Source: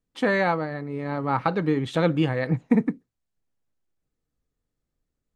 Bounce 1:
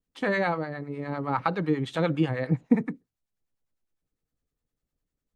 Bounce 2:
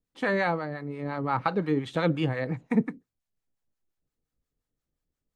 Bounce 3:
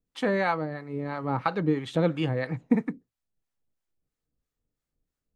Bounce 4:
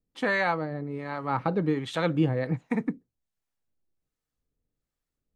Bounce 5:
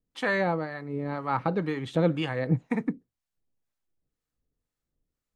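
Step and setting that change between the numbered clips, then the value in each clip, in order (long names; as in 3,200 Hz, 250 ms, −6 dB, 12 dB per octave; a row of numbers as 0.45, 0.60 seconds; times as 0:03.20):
two-band tremolo in antiphase, speed: 9.9, 5.7, 3, 1.3, 2 Hertz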